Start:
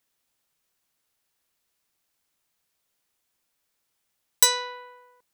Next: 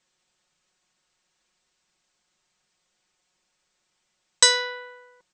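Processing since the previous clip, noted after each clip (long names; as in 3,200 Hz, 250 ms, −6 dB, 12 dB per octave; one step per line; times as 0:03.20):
Butterworth low-pass 8,300 Hz 96 dB per octave
comb filter 5.5 ms
level +4.5 dB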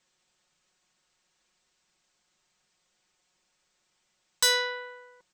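soft clipping −18 dBFS, distortion −6 dB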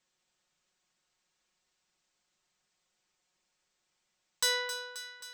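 feedback echo with a high-pass in the loop 266 ms, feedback 65%, level −11 dB
level −6 dB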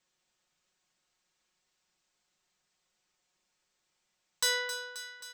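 double-tracking delay 33 ms −11 dB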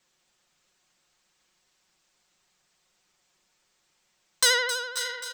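pitch vibrato 12 Hz 63 cents
single-tap delay 544 ms −12 dB
level +8 dB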